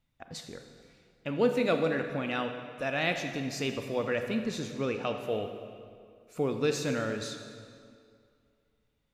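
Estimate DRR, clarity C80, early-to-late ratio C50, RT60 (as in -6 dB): 6.0 dB, 7.5 dB, 6.5 dB, 2.3 s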